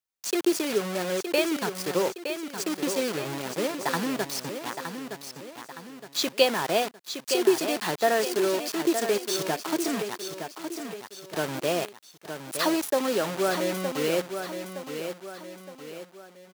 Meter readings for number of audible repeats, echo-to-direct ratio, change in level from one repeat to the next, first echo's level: 3, −7.0 dB, −7.0 dB, −8.0 dB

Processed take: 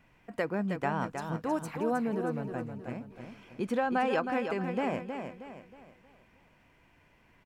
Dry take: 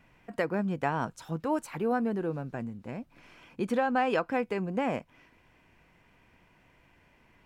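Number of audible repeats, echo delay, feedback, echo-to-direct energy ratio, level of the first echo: 4, 316 ms, 40%, −6.0 dB, −7.0 dB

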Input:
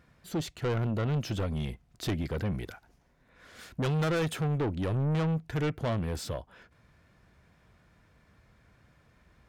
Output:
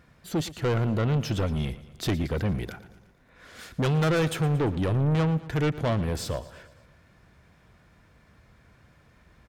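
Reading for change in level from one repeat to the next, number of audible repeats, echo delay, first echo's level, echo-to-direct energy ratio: −5.0 dB, 4, 115 ms, −17.0 dB, −15.5 dB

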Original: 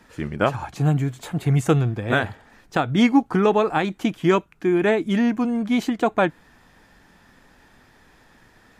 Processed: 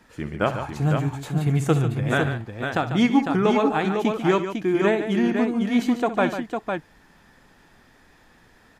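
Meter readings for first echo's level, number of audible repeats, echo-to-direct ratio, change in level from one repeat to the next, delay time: −14.0 dB, 3, −3.5 dB, repeats not evenly spaced, 65 ms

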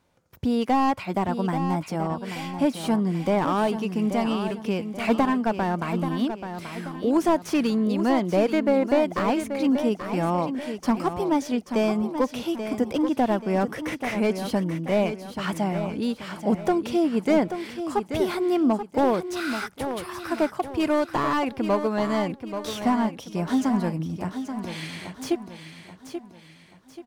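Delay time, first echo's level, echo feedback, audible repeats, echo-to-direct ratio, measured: 833 ms, −9.0 dB, 41%, 4, −8.0 dB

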